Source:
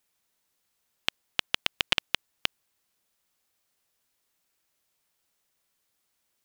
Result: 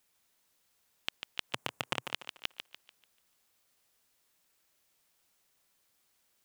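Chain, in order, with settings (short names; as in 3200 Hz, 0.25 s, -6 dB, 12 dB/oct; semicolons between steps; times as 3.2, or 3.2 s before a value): 1.49–2.11 graphic EQ 125/250/500/1000/4000/8000 Hz +10/+6/+7/+8/-7/+5 dB; limiter -13.5 dBFS, peak gain reduction 12 dB; thinning echo 0.146 s, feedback 38%, high-pass 200 Hz, level -7.5 dB; gain +2 dB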